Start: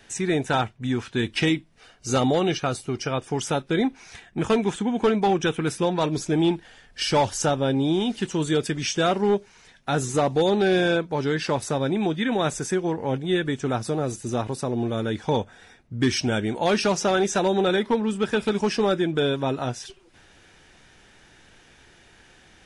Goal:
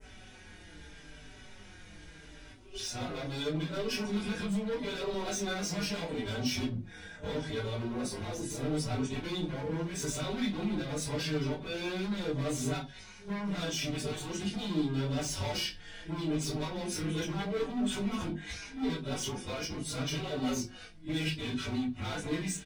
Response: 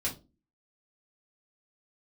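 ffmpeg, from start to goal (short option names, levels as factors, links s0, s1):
-filter_complex "[0:a]areverse,alimiter=limit=0.0631:level=0:latency=1:release=94,asplit=2[s0][s1];[s1]adelay=20,volume=0.501[s2];[s0][s2]amix=inputs=2:normalize=0,volume=47.3,asoftclip=hard,volume=0.0211,adynamicequalizer=threshold=0.00282:dfrequency=3700:dqfactor=1.2:tfrequency=3700:tqfactor=1.2:attack=5:release=100:ratio=0.375:range=2:mode=boostabove:tftype=bell[s3];[1:a]atrim=start_sample=2205[s4];[s3][s4]afir=irnorm=-1:irlink=0,asplit=2[s5][s6];[s6]adelay=4.7,afreqshift=-0.79[s7];[s5][s7]amix=inputs=2:normalize=1,volume=0.794"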